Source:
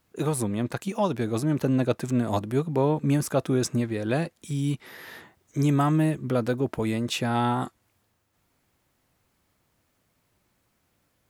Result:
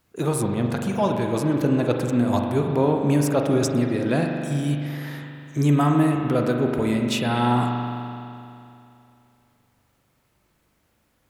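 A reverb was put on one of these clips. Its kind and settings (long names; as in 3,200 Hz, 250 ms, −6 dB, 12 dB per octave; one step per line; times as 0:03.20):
spring reverb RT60 2.7 s, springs 41 ms, chirp 25 ms, DRR 2 dB
level +2 dB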